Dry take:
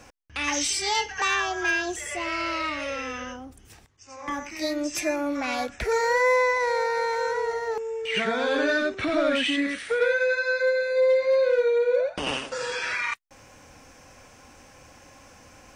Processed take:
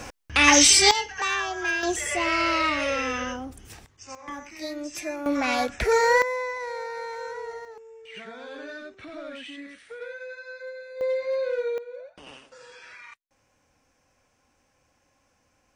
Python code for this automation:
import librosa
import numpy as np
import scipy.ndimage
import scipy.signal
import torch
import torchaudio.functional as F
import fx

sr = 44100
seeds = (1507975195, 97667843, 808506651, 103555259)

y = fx.gain(x, sr, db=fx.steps((0.0, 11.0), (0.91, -2.0), (1.83, 5.0), (4.15, -6.0), (5.26, 3.5), (6.22, -8.5), (7.65, -15.5), (11.01, -6.0), (11.78, -17.5)))